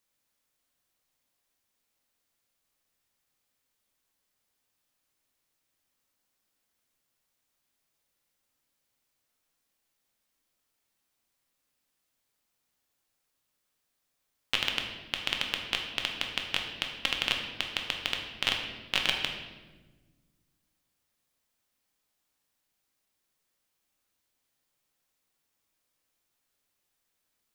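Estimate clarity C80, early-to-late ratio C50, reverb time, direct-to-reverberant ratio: 7.0 dB, 5.0 dB, 1.3 s, 1.5 dB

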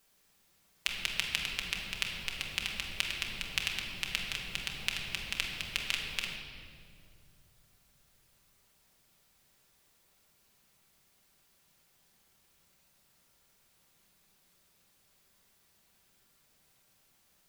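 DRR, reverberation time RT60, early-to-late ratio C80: −1.0 dB, 2.4 s, 4.0 dB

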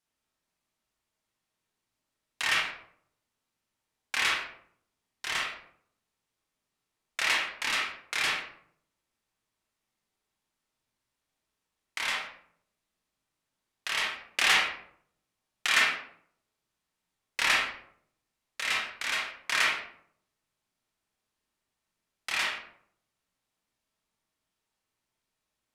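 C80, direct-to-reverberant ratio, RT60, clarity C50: 7.5 dB, −3.5 dB, 0.65 s, 2.5 dB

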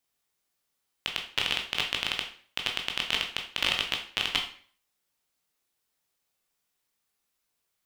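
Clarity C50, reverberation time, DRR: 8.0 dB, 0.45 s, 1.5 dB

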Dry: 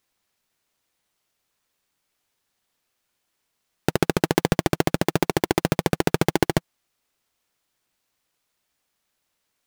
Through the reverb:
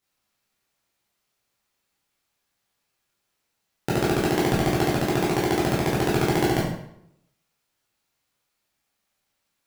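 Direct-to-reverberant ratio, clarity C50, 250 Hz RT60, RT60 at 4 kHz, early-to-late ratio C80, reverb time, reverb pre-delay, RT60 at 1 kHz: −7.0 dB, 2.0 dB, 0.80 s, 0.55 s, 6.0 dB, 0.75 s, 11 ms, 0.75 s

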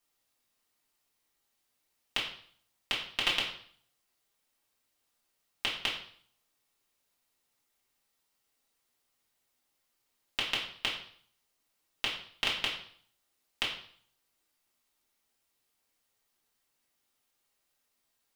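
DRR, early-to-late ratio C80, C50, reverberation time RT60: −6.5 dB, 9.5 dB, 5.5 dB, 0.55 s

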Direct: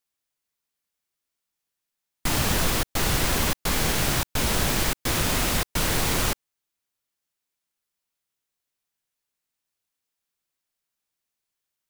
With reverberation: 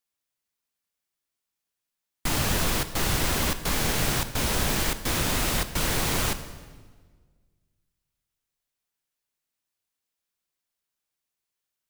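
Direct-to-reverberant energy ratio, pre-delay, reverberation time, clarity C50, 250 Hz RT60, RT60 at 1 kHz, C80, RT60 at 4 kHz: 11.0 dB, 23 ms, 1.5 s, 12.0 dB, 1.9 s, 1.4 s, 13.5 dB, 1.2 s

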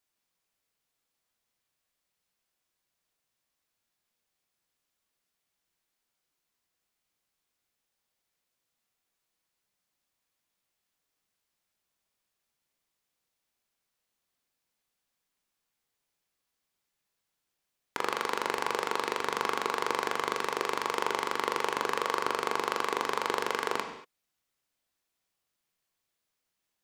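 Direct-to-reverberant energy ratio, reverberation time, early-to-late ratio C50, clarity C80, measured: 4.5 dB, non-exponential decay, 7.5 dB, 9.5 dB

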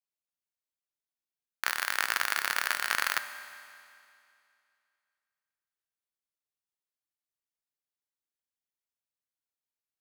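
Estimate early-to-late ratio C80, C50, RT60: 12.0 dB, 11.0 dB, 2.5 s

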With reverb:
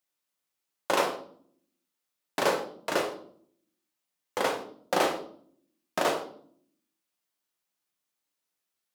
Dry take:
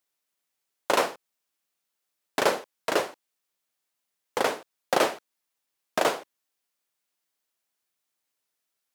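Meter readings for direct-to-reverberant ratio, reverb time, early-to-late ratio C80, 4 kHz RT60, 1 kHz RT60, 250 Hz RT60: 3.0 dB, 0.55 s, 14.0 dB, 0.45 s, 0.50 s, 0.95 s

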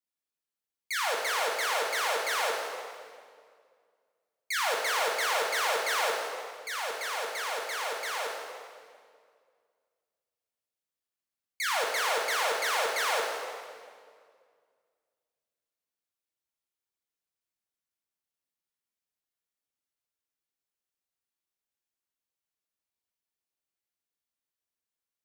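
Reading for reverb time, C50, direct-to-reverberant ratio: 2.0 s, 2.0 dB, −1.0 dB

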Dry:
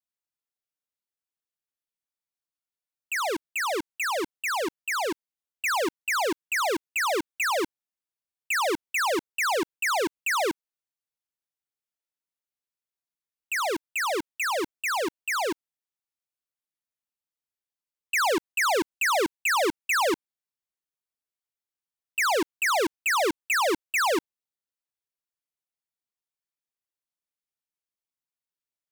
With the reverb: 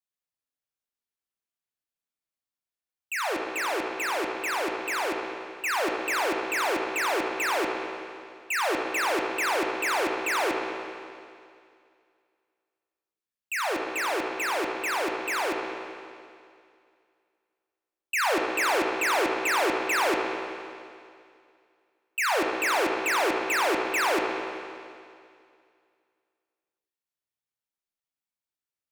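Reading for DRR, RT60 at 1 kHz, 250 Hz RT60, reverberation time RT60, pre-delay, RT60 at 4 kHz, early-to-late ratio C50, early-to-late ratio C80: 0.5 dB, 2.3 s, 2.2 s, 2.3 s, 16 ms, 2.3 s, 2.0 dB, 3.5 dB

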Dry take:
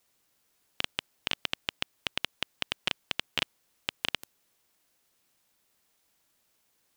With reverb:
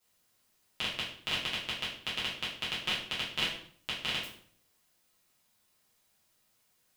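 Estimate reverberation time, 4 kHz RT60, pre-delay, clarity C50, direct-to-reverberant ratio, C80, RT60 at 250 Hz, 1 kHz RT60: 0.55 s, 0.45 s, 5 ms, 4.5 dB, −8.5 dB, 9.0 dB, 0.65 s, 0.55 s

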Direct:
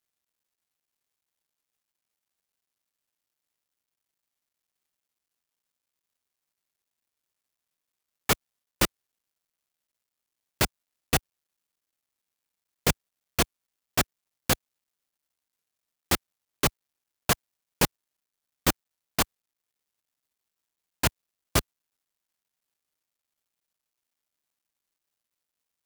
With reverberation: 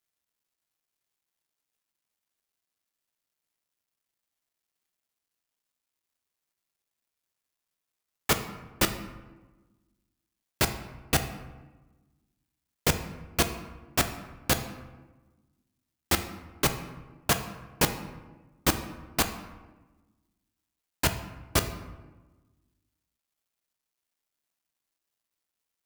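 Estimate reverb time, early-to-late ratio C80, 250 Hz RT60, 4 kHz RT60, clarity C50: 1.2 s, 12.0 dB, 1.6 s, 0.70 s, 10.0 dB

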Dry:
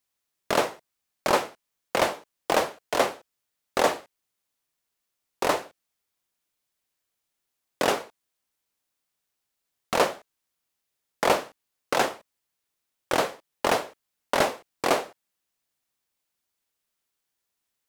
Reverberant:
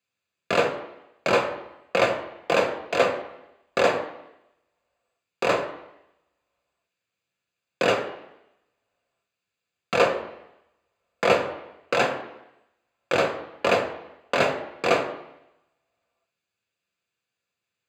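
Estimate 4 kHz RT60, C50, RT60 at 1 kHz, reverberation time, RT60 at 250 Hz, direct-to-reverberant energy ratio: 0.90 s, 10.5 dB, 0.85 s, 0.85 s, 0.85 s, 5.0 dB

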